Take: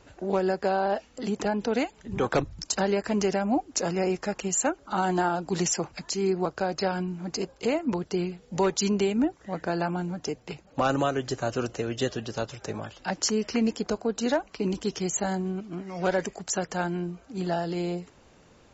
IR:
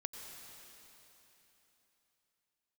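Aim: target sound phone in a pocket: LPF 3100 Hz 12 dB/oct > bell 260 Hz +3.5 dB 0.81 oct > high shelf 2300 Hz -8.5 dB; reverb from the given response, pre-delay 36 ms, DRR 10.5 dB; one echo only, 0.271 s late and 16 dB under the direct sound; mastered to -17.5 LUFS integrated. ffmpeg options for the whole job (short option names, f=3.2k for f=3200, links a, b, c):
-filter_complex "[0:a]aecho=1:1:271:0.158,asplit=2[a][b];[1:a]atrim=start_sample=2205,adelay=36[c];[b][c]afir=irnorm=-1:irlink=0,volume=-9dB[d];[a][d]amix=inputs=2:normalize=0,lowpass=3.1k,equalizer=f=260:t=o:w=0.81:g=3.5,highshelf=f=2.3k:g=-8.5,volume=10.5dB"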